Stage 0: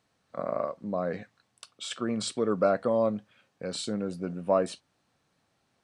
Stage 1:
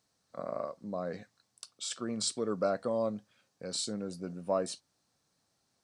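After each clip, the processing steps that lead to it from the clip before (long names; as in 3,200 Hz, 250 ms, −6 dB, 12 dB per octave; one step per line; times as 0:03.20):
high shelf with overshoot 3,800 Hz +7.5 dB, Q 1.5
level −6 dB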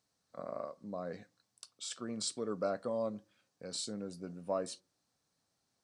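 convolution reverb RT60 0.40 s, pre-delay 4 ms, DRR 19.5 dB
level −4.5 dB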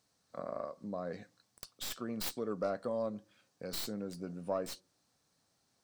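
stylus tracing distortion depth 0.18 ms
in parallel at +2.5 dB: downward compressor, threshold −45 dBFS, peak gain reduction 15 dB
on the sum: level −2.5 dB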